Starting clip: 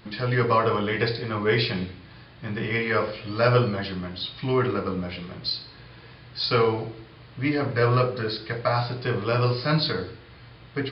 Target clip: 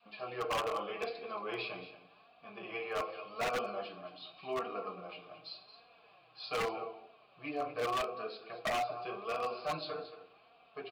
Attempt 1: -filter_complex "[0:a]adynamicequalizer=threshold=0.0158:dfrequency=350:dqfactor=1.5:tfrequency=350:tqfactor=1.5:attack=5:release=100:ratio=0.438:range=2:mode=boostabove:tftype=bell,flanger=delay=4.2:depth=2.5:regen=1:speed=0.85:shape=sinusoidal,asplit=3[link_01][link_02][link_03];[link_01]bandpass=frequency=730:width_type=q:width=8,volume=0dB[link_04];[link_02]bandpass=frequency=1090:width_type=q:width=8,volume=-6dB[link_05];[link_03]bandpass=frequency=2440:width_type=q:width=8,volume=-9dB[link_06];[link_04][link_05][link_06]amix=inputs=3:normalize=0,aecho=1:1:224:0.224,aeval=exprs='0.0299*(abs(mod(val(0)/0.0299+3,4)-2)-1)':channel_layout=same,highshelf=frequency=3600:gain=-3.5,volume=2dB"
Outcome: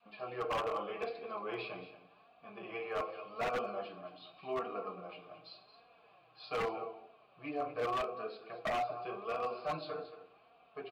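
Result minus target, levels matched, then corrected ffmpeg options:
8,000 Hz band −8.5 dB
-filter_complex "[0:a]adynamicequalizer=threshold=0.0158:dfrequency=350:dqfactor=1.5:tfrequency=350:tqfactor=1.5:attack=5:release=100:ratio=0.438:range=2:mode=boostabove:tftype=bell,flanger=delay=4.2:depth=2.5:regen=1:speed=0.85:shape=sinusoidal,asplit=3[link_01][link_02][link_03];[link_01]bandpass=frequency=730:width_type=q:width=8,volume=0dB[link_04];[link_02]bandpass=frequency=1090:width_type=q:width=8,volume=-6dB[link_05];[link_03]bandpass=frequency=2440:width_type=q:width=8,volume=-9dB[link_06];[link_04][link_05][link_06]amix=inputs=3:normalize=0,aecho=1:1:224:0.224,aeval=exprs='0.0299*(abs(mod(val(0)/0.0299+3,4)-2)-1)':channel_layout=same,highshelf=frequency=3600:gain=8,volume=2dB"

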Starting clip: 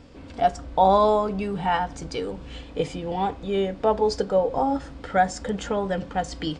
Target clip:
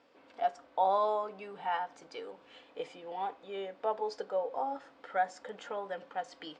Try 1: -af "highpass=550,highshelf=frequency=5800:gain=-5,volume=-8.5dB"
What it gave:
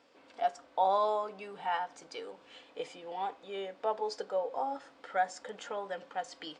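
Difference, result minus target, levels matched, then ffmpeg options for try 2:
8,000 Hz band +7.0 dB
-af "highpass=550,highshelf=frequency=5800:gain=-17,volume=-8.5dB"

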